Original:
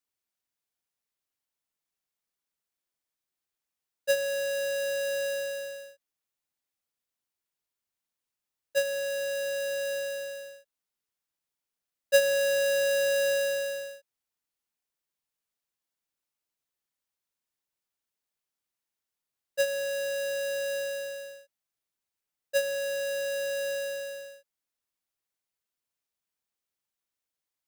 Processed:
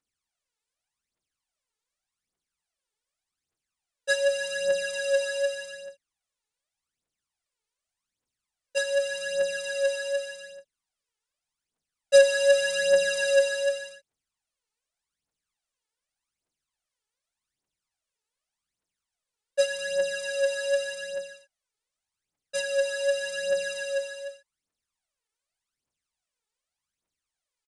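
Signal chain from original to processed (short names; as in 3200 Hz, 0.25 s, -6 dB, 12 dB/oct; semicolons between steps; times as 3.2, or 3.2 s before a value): phaser 0.85 Hz, delay 2.4 ms, feedback 72%; downsampling 22050 Hz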